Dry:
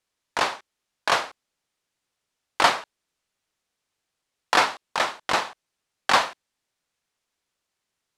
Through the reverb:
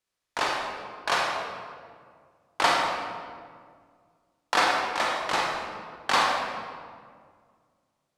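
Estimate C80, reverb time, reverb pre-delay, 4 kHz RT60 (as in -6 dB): 2.0 dB, 2.0 s, 33 ms, 1.2 s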